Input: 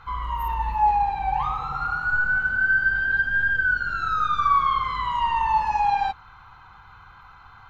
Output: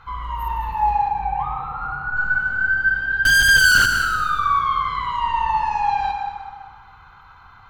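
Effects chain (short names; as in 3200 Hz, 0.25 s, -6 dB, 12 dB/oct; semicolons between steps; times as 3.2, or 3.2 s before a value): 1.08–2.17 air absorption 410 m; 3.25–3.86 fuzz box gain 37 dB, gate -43 dBFS; plate-style reverb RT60 1.7 s, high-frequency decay 0.7×, pre-delay 95 ms, DRR 4.5 dB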